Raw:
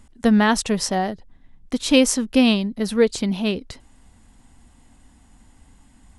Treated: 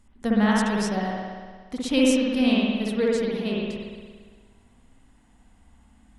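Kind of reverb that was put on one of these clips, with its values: spring tank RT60 1.6 s, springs 58 ms, chirp 70 ms, DRR -4.5 dB; gain -9.5 dB

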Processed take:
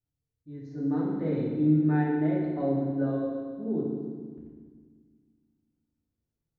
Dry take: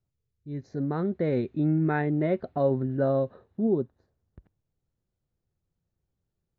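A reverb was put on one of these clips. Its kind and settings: FDN reverb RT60 1.6 s, low-frequency decay 1.5×, high-frequency decay 0.9×, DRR -5.5 dB; gain -11.5 dB

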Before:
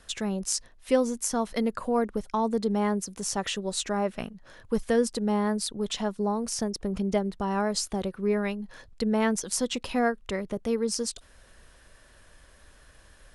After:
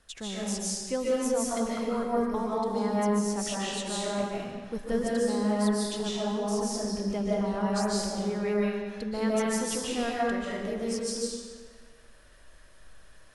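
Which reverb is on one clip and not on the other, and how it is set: digital reverb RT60 1.5 s, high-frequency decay 0.9×, pre-delay 0.105 s, DRR -6.5 dB; gain -8.5 dB

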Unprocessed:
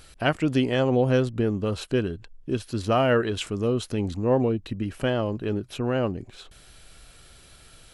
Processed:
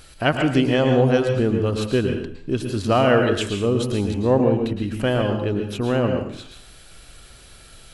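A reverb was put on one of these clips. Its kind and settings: plate-style reverb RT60 0.56 s, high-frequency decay 0.9×, pre-delay 0.1 s, DRR 4.5 dB; gain +3.5 dB

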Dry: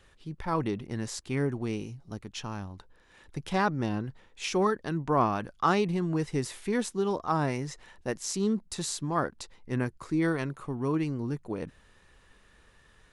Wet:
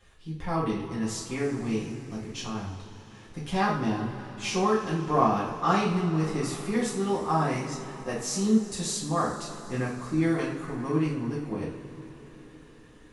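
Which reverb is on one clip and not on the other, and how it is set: two-slope reverb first 0.46 s, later 4.9 s, from -19 dB, DRR -7 dB; gain -5.5 dB

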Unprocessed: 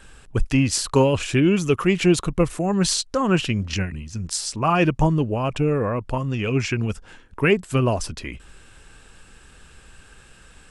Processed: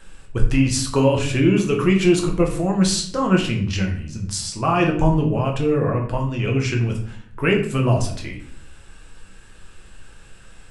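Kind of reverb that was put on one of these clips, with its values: shoebox room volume 84 m³, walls mixed, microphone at 0.72 m; gain -2.5 dB

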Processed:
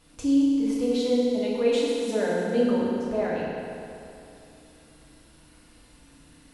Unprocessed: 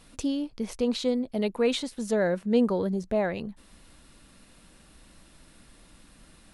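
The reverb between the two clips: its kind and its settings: FDN reverb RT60 2.7 s, high-frequency decay 0.8×, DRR -6.5 dB; gain -6.5 dB

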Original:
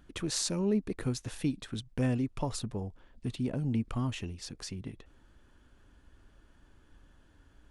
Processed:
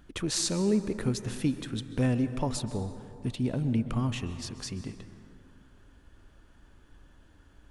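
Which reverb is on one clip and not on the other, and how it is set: plate-style reverb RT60 2.5 s, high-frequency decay 0.45×, pre-delay 0.115 s, DRR 11 dB; gain +3 dB

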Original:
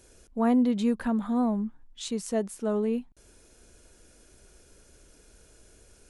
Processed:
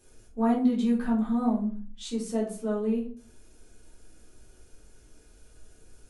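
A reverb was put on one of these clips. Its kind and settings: shoebox room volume 270 m³, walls furnished, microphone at 3.7 m; gain -9 dB

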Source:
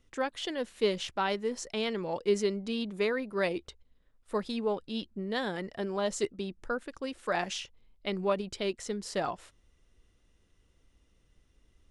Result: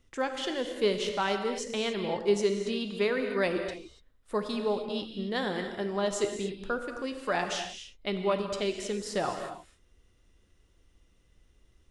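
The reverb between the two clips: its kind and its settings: non-linear reverb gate 0.31 s flat, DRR 5 dB; gain +1 dB

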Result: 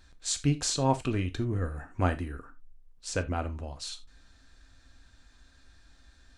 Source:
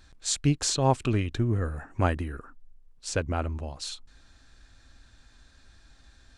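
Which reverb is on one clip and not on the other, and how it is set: non-linear reverb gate 0.11 s falling, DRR 8 dB; gain -3 dB

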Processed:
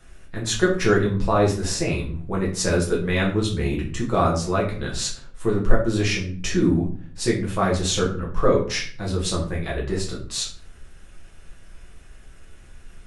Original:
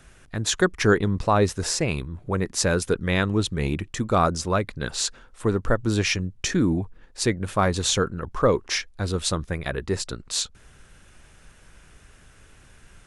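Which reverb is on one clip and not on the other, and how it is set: shoebox room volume 44 m³, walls mixed, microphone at 1 m; gain -5.5 dB

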